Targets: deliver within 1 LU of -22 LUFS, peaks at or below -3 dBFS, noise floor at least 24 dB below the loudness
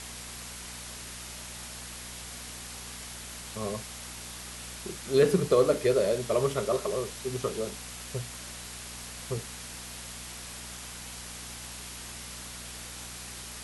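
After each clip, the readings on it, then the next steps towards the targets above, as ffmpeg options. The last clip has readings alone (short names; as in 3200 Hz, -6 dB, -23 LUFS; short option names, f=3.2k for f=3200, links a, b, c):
hum 60 Hz; harmonics up to 240 Hz; hum level -46 dBFS; noise floor -42 dBFS; noise floor target -57 dBFS; loudness -33.0 LUFS; peak -11.0 dBFS; loudness target -22.0 LUFS
-> -af "bandreject=f=60:t=h:w=4,bandreject=f=120:t=h:w=4,bandreject=f=180:t=h:w=4,bandreject=f=240:t=h:w=4"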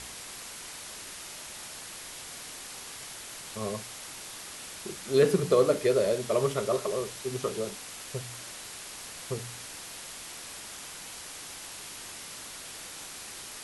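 hum none; noise floor -43 dBFS; noise floor target -57 dBFS
-> -af "afftdn=nr=14:nf=-43"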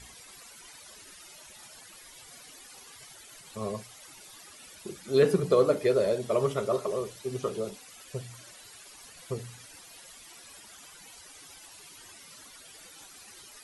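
noise floor -51 dBFS; noise floor target -53 dBFS
-> -af "afftdn=nr=6:nf=-51"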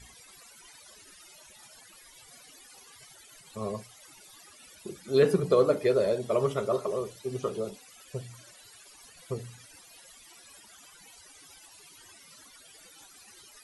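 noise floor -54 dBFS; loudness -29.0 LUFS; peak -11.0 dBFS; loudness target -22.0 LUFS
-> -af "volume=7dB"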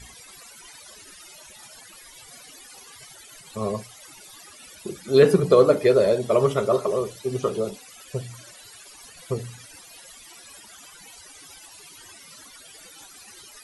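loudness -22.0 LUFS; peak -4.0 dBFS; noise floor -47 dBFS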